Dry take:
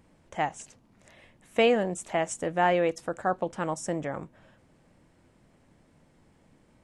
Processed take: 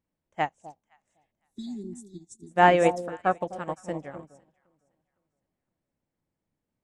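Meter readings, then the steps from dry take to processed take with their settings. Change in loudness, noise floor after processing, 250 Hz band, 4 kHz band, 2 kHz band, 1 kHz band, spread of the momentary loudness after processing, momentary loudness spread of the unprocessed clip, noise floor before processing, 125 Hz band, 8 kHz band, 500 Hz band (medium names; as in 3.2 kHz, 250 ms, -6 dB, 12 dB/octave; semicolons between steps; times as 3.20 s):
+2.5 dB, under -85 dBFS, -0.5 dB, -3.5 dB, +2.0 dB, +4.0 dB, 24 LU, 11 LU, -63 dBFS, +1.0 dB, -8.0 dB, -0.5 dB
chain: spectral selection erased 1.32–2.51 s, 410–3400 Hz; echo whose repeats swap between lows and highs 256 ms, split 850 Hz, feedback 54%, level -5 dB; upward expansion 2.5:1, over -42 dBFS; trim +7.5 dB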